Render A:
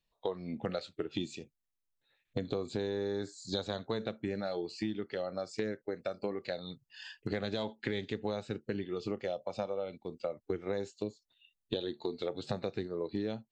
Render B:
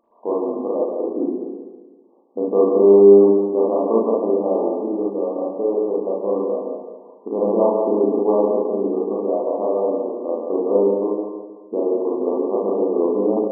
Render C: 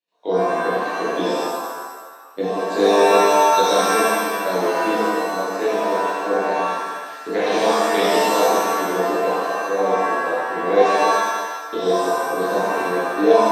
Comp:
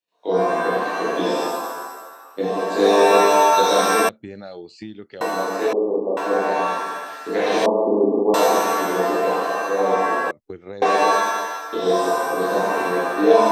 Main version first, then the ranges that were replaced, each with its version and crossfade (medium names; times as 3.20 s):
C
4.09–5.21 s: from A
5.73–6.17 s: from B
7.66–8.34 s: from B
10.31–10.82 s: from A